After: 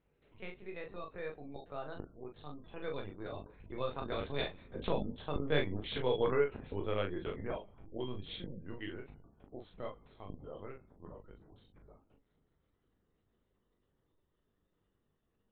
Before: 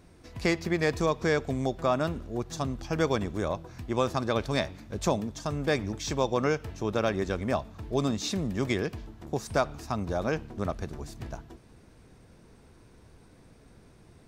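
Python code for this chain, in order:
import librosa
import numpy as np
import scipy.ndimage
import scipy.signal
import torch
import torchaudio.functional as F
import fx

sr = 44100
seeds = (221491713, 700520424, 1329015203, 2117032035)

y = fx.speed_glide(x, sr, from_pct=106, to_pct=78)
y = fx.doppler_pass(y, sr, speed_mps=8, closest_m=8.1, pass_at_s=5.71)
y = fx.spec_gate(y, sr, threshold_db=-30, keep='strong')
y = fx.high_shelf(y, sr, hz=2900.0, db=11.5)
y = fx.lpc_vocoder(y, sr, seeds[0], excitation='pitch_kept', order=10)
y = fx.peak_eq(y, sr, hz=450.0, db=5.0, octaves=0.42)
y = fx.room_early_taps(y, sr, ms=(21, 40), db=(-8.0, -5.0))
y = F.gain(torch.from_numpy(y), -8.0).numpy()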